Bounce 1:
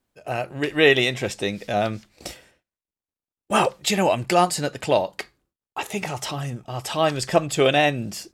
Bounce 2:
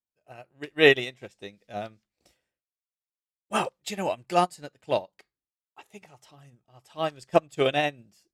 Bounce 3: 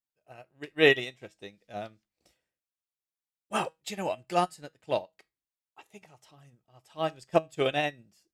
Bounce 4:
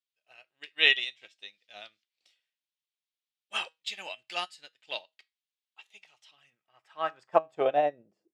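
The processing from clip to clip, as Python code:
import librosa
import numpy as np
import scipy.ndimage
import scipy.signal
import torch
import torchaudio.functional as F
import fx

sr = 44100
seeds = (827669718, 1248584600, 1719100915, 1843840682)

y1 = fx.upward_expand(x, sr, threshold_db=-31.0, expansion=2.5)
y2 = fx.comb_fb(y1, sr, f0_hz=160.0, decay_s=0.2, harmonics='all', damping=0.0, mix_pct=40)
y3 = fx.filter_sweep_bandpass(y2, sr, from_hz=3300.0, to_hz=360.0, start_s=6.24, end_s=8.32, q=2.0)
y3 = y3 * 10.0 ** (7.0 / 20.0)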